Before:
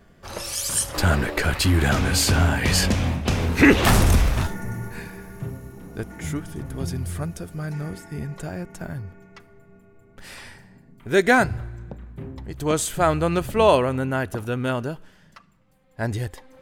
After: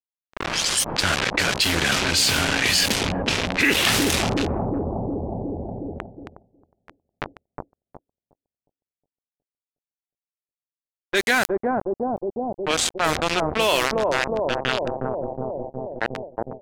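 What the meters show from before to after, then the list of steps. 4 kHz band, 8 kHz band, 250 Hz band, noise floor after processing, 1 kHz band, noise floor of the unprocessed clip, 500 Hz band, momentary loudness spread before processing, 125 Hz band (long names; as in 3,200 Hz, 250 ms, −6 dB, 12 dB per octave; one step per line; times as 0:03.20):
+6.5 dB, +1.5 dB, −3.5 dB, below −85 dBFS, 0.0 dB, −54 dBFS, −1.0 dB, 19 LU, −8.5 dB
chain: meter weighting curve D
centre clipping without the shift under −17.5 dBFS
on a send: bucket-brigade delay 363 ms, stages 2,048, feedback 48%, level −5 dB
on the sum: low-pass that shuts in the quiet parts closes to 1,500 Hz, open at −13 dBFS
downward expander −47 dBFS
envelope flattener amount 70%
level −10 dB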